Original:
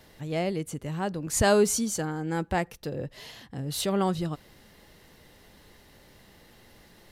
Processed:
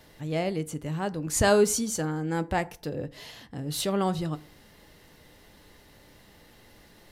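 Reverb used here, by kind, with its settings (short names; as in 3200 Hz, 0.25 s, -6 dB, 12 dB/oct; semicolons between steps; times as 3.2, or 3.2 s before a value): FDN reverb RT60 0.43 s, low-frequency decay 0.95×, high-frequency decay 0.55×, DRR 13 dB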